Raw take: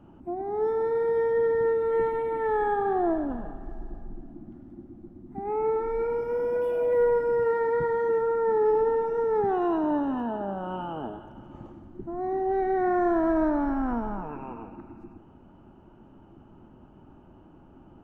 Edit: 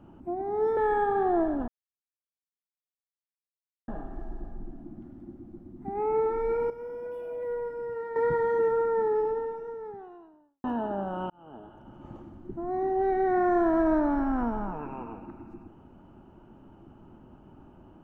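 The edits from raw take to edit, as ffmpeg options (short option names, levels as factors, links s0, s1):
-filter_complex "[0:a]asplit=7[s0][s1][s2][s3][s4][s5][s6];[s0]atrim=end=0.772[s7];[s1]atrim=start=2.468:end=3.38,asetpts=PTS-STARTPTS,afade=t=out:st=0.908:d=0.004:c=hsin,apad=pad_dur=2.2[s8];[s2]atrim=start=3.38:end=6.202,asetpts=PTS-STARTPTS,afade=t=in:d=0.004:c=hsin[s9];[s3]atrim=start=6.198:end=7.662,asetpts=PTS-STARTPTS,volume=0.299[s10];[s4]atrim=start=7.658:end=10.14,asetpts=PTS-STARTPTS,afade=t=out:st=0.632:d=1.85:c=qua[s11];[s5]atrim=start=10.14:end=10.8,asetpts=PTS-STARTPTS,afade=t=in:d=0.004:c=hsin,afade=t=out:st=0.656:d=0.004:c=hsin[s12];[s6]atrim=start=10.8,asetpts=PTS-STARTPTS,afade=t=in:d=0.89[s13];[s8][s9]concat=n=2:v=0:a=1[s14];[s7][s14]acrossfade=d=0.004:c1=hsin:c2=hsin[s15];[s15][s10]acrossfade=d=0.004:c1=hsin:c2=hsin[s16];[s11][s12][s13]concat=n=3:v=0:a=1[s17];[s16][s17]acrossfade=d=0.004:c1=hsin:c2=hsin"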